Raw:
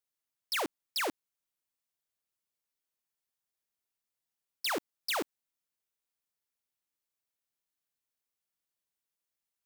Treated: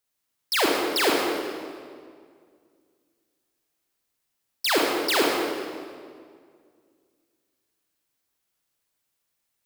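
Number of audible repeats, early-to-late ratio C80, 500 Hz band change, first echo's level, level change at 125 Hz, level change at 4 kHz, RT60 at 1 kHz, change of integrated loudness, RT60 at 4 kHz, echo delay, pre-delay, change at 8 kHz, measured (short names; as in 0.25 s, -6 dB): none, 1.0 dB, +15.5 dB, none, +13.5 dB, +11.5 dB, 1.9 s, +11.0 dB, 1.5 s, none, 30 ms, +11.0 dB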